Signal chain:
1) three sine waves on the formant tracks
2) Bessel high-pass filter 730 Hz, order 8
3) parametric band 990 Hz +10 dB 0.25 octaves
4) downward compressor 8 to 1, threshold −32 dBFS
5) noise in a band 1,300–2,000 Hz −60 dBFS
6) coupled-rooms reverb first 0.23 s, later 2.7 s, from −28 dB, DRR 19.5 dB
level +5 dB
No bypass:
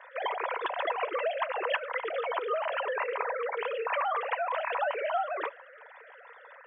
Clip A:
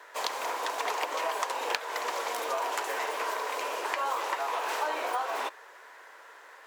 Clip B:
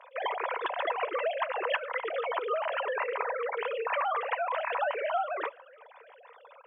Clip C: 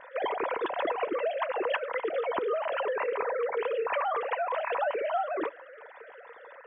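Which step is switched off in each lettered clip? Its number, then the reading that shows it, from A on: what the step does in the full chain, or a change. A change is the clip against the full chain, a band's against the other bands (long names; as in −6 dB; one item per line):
1, change in crest factor +9.0 dB
5, change in momentary loudness spread −17 LU
2, change in crest factor −1.5 dB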